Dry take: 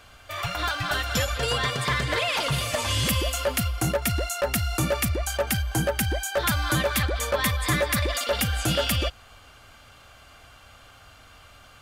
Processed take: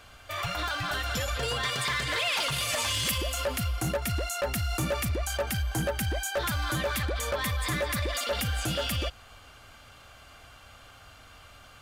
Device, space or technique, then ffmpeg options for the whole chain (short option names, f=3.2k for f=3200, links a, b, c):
limiter into clipper: -filter_complex "[0:a]alimiter=limit=-20.5dB:level=0:latency=1:release=41,asoftclip=type=hard:threshold=-23dB,asettb=1/sr,asplit=3[a][b][c];[a]atrim=end=1.634[d];[b]atrim=start=1.63:end=3.18,asetpts=PTS-STARTPTS,afade=t=in:d=0.004:c=qsin,afade=t=out:st=1.546:d=0.004:c=qsin,tiltshelf=f=940:g=-4.5[e];[c]atrim=start=3.176[f];[d][e]acrossfade=d=0.004:c1=hsin:c2=qsin[g];[g][f]acrossfade=d=0.004:c1=qsin:c2=hsin,volume=-1dB"